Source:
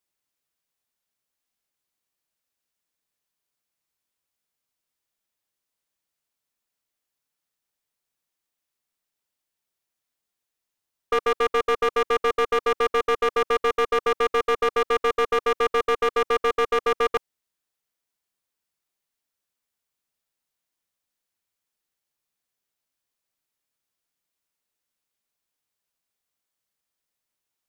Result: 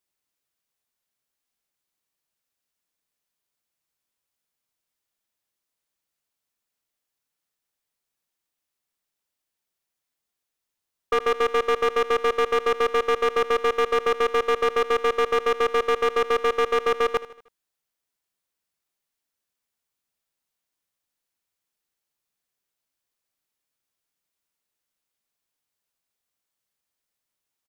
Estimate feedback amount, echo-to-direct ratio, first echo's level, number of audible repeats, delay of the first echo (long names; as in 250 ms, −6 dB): 49%, −15.5 dB, −16.5 dB, 3, 78 ms